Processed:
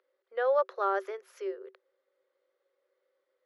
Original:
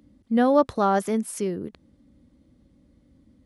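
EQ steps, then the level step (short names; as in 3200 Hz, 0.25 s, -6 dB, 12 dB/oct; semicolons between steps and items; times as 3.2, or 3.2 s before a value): running mean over 5 samples; rippled Chebyshev high-pass 370 Hz, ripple 9 dB; -2.0 dB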